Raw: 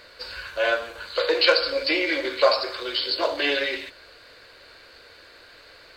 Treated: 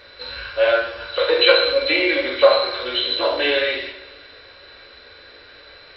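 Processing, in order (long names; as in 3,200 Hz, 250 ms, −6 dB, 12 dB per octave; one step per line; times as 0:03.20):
hearing-aid frequency compression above 3,900 Hz 4 to 1
coupled-rooms reverb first 0.58 s, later 2.1 s, DRR −0.5 dB
level +1 dB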